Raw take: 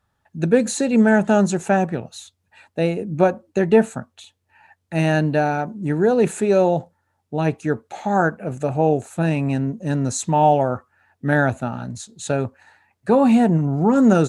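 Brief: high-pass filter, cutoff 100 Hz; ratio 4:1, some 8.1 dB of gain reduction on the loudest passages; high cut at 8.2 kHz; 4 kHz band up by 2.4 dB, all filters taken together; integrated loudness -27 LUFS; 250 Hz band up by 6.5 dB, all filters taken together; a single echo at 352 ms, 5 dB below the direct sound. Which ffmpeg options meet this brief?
-af "highpass=100,lowpass=8200,equalizer=f=250:t=o:g=8,equalizer=f=4000:t=o:g=3,acompressor=threshold=0.2:ratio=4,aecho=1:1:352:0.562,volume=0.422"

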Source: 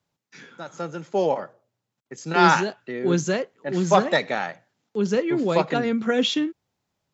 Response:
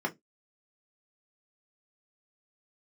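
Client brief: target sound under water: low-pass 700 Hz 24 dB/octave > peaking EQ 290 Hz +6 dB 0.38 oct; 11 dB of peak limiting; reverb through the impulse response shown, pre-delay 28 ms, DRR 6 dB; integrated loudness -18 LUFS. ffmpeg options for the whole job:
-filter_complex "[0:a]alimiter=limit=0.224:level=0:latency=1,asplit=2[s0][s1];[1:a]atrim=start_sample=2205,adelay=28[s2];[s1][s2]afir=irnorm=-1:irlink=0,volume=0.224[s3];[s0][s3]amix=inputs=2:normalize=0,lowpass=f=700:w=0.5412,lowpass=f=700:w=1.3066,equalizer=f=290:t=o:w=0.38:g=6,volume=1.78"

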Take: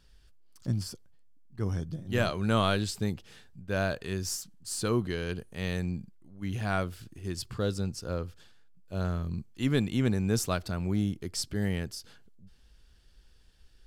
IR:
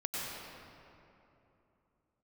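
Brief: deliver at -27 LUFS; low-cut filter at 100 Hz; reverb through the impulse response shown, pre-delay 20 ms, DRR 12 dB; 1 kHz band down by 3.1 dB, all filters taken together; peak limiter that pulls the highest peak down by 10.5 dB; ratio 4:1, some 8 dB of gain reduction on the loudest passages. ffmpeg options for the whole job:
-filter_complex "[0:a]highpass=100,equalizer=f=1000:t=o:g=-4.5,acompressor=threshold=0.0251:ratio=4,alimiter=level_in=2.37:limit=0.0631:level=0:latency=1,volume=0.422,asplit=2[s0][s1];[1:a]atrim=start_sample=2205,adelay=20[s2];[s1][s2]afir=irnorm=-1:irlink=0,volume=0.15[s3];[s0][s3]amix=inputs=2:normalize=0,volume=5.96"

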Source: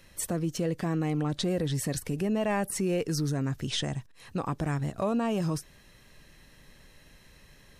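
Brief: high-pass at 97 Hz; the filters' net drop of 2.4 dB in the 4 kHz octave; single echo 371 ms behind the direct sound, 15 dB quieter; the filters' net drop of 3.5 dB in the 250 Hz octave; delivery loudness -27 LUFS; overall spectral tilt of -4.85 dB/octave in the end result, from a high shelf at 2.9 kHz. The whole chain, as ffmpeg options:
-af "highpass=97,equalizer=f=250:t=o:g=-5,highshelf=f=2900:g=3,equalizer=f=4000:t=o:g=-5.5,aecho=1:1:371:0.178,volume=1.78"

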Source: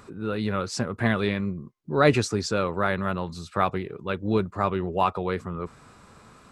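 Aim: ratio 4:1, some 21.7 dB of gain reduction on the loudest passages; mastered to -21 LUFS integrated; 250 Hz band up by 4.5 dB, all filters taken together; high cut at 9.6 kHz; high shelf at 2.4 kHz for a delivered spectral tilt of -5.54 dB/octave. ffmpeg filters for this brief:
-af "lowpass=9600,equalizer=f=250:t=o:g=6,highshelf=f=2400:g=3,acompressor=threshold=0.0126:ratio=4,volume=8.91"

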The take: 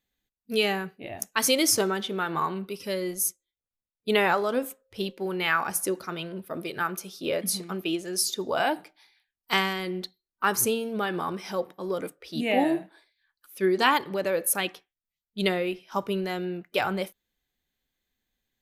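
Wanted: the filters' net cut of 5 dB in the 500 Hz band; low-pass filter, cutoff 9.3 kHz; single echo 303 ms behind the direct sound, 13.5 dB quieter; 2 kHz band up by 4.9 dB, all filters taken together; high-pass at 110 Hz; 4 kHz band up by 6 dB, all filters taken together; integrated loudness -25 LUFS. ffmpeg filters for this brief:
-af "highpass=110,lowpass=9300,equalizer=f=500:t=o:g=-7,equalizer=f=2000:t=o:g=5,equalizer=f=4000:t=o:g=6.5,aecho=1:1:303:0.211,volume=1.12"

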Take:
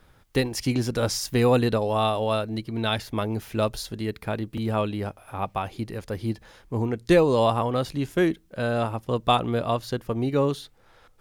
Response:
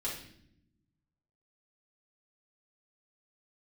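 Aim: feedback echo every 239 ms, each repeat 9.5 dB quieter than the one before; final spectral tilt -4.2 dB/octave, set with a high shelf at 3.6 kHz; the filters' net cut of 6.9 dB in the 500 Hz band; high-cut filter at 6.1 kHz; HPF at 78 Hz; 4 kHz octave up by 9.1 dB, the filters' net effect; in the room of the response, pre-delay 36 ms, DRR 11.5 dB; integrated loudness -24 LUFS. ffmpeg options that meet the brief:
-filter_complex "[0:a]highpass=78,lowpass=6100,equalizer=f=500:t=o:g=-9,highshelf=f=3600:g=7.5,equalizer=f=4000:t=o:g=7,aecho=1:1:239|478|717|956:0.335|0.111|0.0365|0.012,asplit=2[s0][s1];[1:a]atrim=start_sample=2205,adelay=36[s2];[s1][s2]afir=irnorm=-1:irlink=0,volume=0.188[s3];[s0][s3]amix=inputs=2:normalize=0,volume=1.19"

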